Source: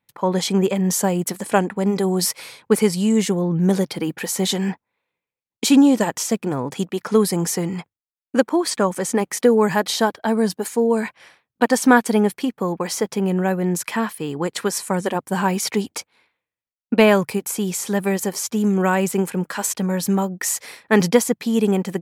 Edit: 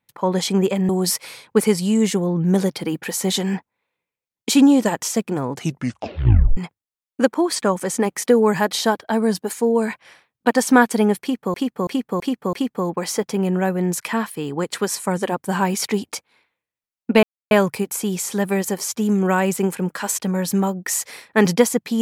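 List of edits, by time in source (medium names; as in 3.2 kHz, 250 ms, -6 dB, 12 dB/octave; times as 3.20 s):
0.89–2.04 s: delete
6.66 s: tape stop 1.06 s
12.36–12.69 s: loop, 5 plays
17.06 s: insert silence 0.28 s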